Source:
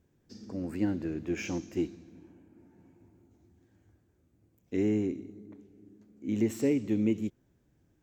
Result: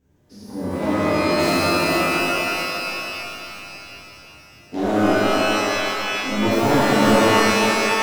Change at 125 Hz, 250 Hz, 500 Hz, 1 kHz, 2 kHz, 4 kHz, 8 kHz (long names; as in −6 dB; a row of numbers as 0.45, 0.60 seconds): +11.0 dB, +10.0 dB, +16.0 dB, +34.5 dB, +26.5 dB, can't be measured, +20.5 dB